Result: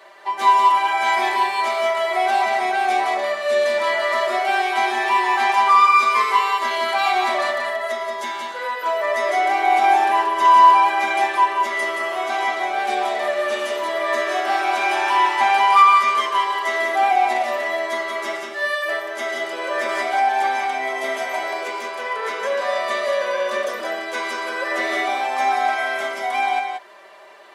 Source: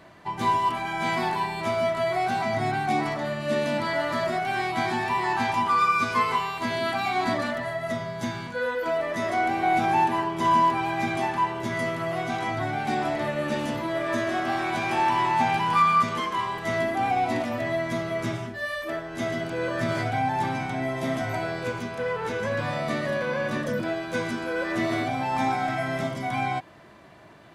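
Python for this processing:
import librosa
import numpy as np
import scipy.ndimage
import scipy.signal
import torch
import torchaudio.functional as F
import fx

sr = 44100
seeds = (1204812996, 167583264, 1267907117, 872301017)

p1 = scipy.signal.sosfilt(scipy.signal.butter(4, 430.0, 'highpass', fs=sr, output='sos'), x)
p2 = p1 + 0.69 * np.pad(p1, (int(5.1 * sr / 1000.0), 0))[:len(p1)]
p3 = p2 + fx.echo_single(p2, sr, ms=180, db=-5.5, dry=0)
y = p3 * librosa.db_to_amplitude(4.0)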